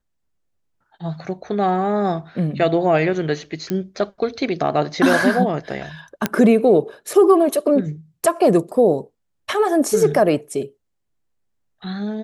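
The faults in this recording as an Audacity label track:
3.700000	3.700000	click −12 dBFS
5.130000	5.130000	drop-out 2.1 ms
6.260000	6.260000	click −3 dBFS

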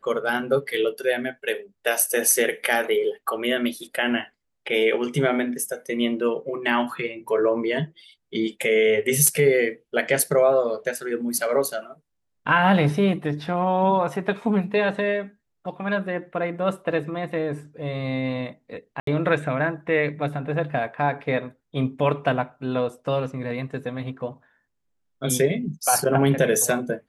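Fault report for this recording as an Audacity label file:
19.000000	19.070000	drop-out 73 ms

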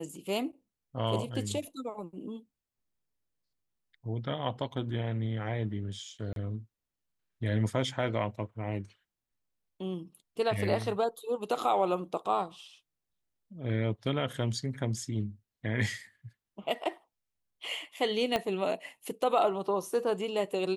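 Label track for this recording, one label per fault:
6.330000	6.360000	drop-out 32 ms
18.360000	18.360000	click −15 dBFS

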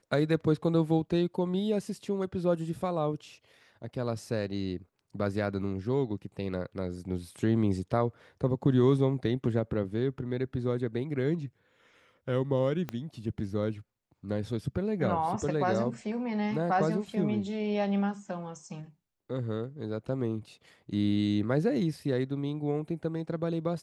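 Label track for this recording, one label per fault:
12.890000	12.890000	click −20 dBFS

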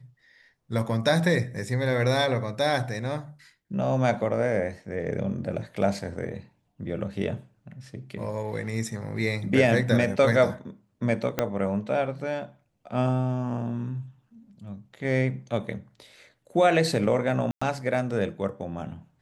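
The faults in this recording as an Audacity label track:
11.390000	11.390000	click −9 dBFS
17.510000	17.610000	drop-out 105 ms

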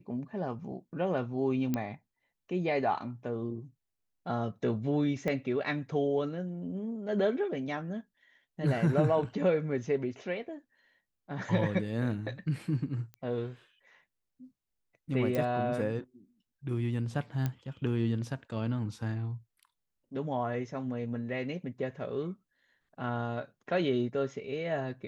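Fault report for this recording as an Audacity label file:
1.740000	1.740000	click −17 dBFS
5.280000	5.280000	click −20 dBFS
13.140000	13.140000	click −31 dBFS
15.350000	15.350000	click −19 dBFS
17.460000	17.460000	click −19 dBFS

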